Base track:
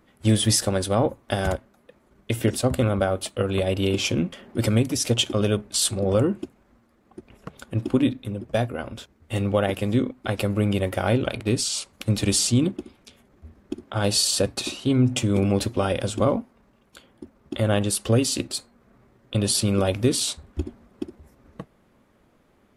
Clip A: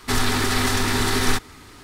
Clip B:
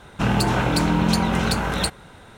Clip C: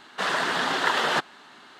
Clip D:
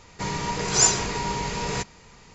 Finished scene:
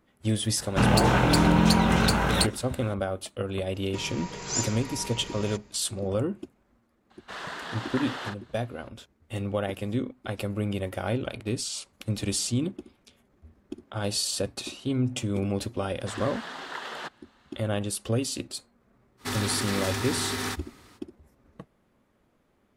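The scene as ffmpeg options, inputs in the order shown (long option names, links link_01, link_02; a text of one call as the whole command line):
ffmpeg -i bed.wav -i cue0.wav -i cue1.wav -i cue2.wav -i cue3.wav -filter_complex "[3:a]asplit=2[link_01][link_02];[0:a]volume=-7dB[link_03];[link_01]asplit=2[link_04][link_05];[link_05]adelay=41,volume=-6dB[link_06];[link_04][link_06]amix=inputs=2:normalize=0[link_07];[1:a]highpass=77[link_08];[2:a]atrim=end=2.37,asetpts=PTS-STARTPTS,volume=-0.5dB,afade=type=in:duration=0.004:curve=hsin,afade=type=out:start_time=2.366:duration=0.004:curve=hsin,adelay=570[link_09];[4:a]atrim=end=2.34,asetpts=PTS-STARTPTS,volume=-11dB,afade=type=in:duration=0.004:curve=hsin,afade=type=out:start_time=2.336:duration=0.004:curve=hsin,adelay=3740[link_10];[link_07]atrim=end=1.79,asetpts=PTS-STARTPTS,volume=-13dB,afade=type=in:duration=0.004:curve=hsin,afade=type=out:start_time=1.786:duration=0.004:curve=hsin,adelay=7100[link_11];[link_02]atrim=end=1.79,asetpts=PTS-STARTPTS,volume=-13.5dB,afade=type=in:duration=0.004:curve=hsin,afade=type=out:start_time=1.786:duration=0.004:curve=hsin,adelay=700308S[link_12];[link_08]atrim=end=1.83,asetpts=PTS-STARTPTS,volume=-9dB,afade=type=in:duration=0.05,afade=type=out:start_time=1.78:duration=0.05,adelay=19170[link_13];[link_03][link_09][link_10][link_11][link_12][link_13]amix=inputs=6:normalize=0" out.wav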